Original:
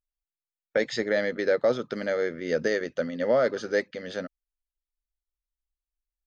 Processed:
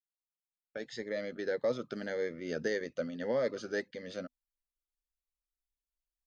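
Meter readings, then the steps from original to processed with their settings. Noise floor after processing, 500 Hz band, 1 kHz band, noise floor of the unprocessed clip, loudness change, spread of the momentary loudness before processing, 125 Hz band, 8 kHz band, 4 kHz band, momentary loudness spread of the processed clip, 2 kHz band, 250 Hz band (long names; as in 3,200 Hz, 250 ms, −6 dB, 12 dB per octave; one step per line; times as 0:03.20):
below −85 dBFS, −9.0 dB, −11.5 dB, below −85 dBFS, −9.0 dB, 11 LU, −6.5 dB, can't be measured, −9.0 dB, 11 LU, −10.0 dB, −7.5 dB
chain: fade in at the beginning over 1.83 s
phaser whose notches keep moving one way rising 1.7 Hz
level −6 dB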